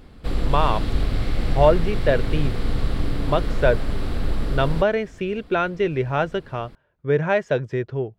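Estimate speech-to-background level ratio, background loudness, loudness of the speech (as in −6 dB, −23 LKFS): 4.0 dB, −27.5 LKFS, −23.5 LKFS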